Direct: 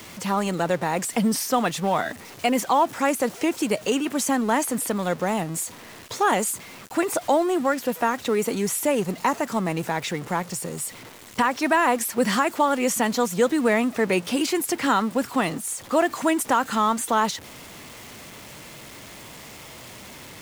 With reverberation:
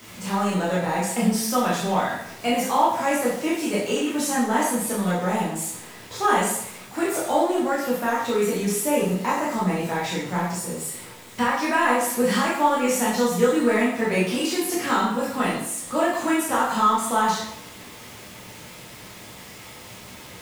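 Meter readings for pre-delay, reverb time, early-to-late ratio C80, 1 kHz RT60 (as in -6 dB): 7 ms, 0.70 s, 5.5 dB, 0.70 s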